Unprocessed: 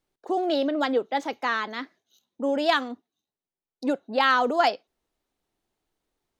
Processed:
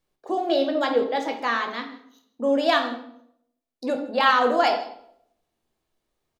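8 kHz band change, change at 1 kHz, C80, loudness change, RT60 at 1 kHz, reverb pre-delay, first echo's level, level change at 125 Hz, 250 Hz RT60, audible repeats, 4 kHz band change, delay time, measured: no reading, +2.0 dB, 11.5 dB, +2.0 dB, 0.60 s, 12 ms, -20.0 dB, no reading, 0.75 s, 1, +2.0 dB, 161 ms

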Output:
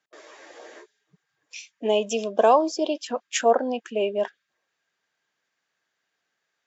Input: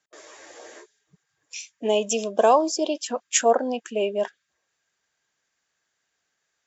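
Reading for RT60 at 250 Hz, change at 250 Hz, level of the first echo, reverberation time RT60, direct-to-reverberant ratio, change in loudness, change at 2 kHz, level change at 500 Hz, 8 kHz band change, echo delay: no reverb, -0.5 dB, no echo, no reverb, no reverb, -0.5 dB, 0.0 dB, 0.0 dB, no reading, no echo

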